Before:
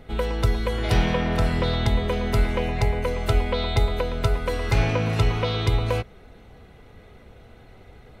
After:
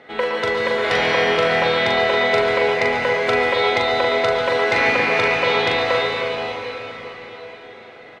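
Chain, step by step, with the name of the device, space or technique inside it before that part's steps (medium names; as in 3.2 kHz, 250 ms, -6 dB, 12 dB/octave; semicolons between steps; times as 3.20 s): station announcement (band-pass 410–4600 Hz; peaking EQ 1.9 kHz +7 dB 0.35 oct; loudspeakers at several distances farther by 14 m -5 dB, 48 m -11 dB; reverberation RT60 4.6 s, pre-delay 109 ms, DRR 0 dB); trim +5.5 dB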